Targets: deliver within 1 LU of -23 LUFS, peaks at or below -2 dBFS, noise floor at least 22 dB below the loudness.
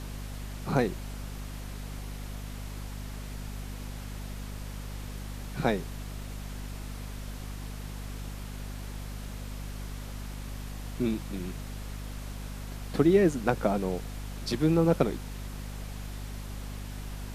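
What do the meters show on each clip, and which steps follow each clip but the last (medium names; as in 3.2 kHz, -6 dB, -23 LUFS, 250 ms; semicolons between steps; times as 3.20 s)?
hum 50 Hz; highest harmonic 250 Hz; hum level -36 dBFS; noise floor -40 dBFS; noise floor target -56 dBFS; loudness -33.5 LUFS; peak level -8.5 dBFS; loudness target -23.0 LUFS
-> de-hum 50 Hz, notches 5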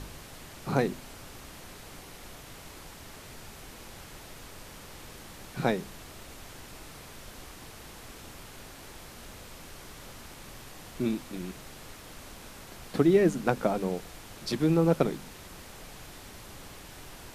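hum not found; noise floor -48 dBFS; noise floor target -51 dBFS
-> noise print and reduce 6 dB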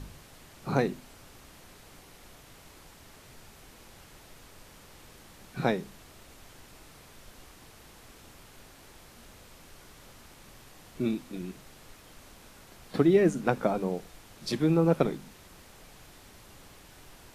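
noise floor -54 dBFS; loudness -28.5 LUFS; peak level -9.0 dBFS; loudness target -23.0 LUFS
-> trim +5.5 dB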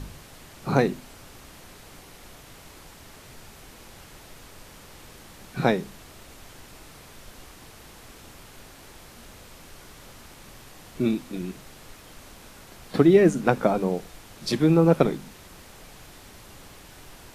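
loudness -23.0 LUFS; peak level -3.5 dBFS; noise floor -48 dBFS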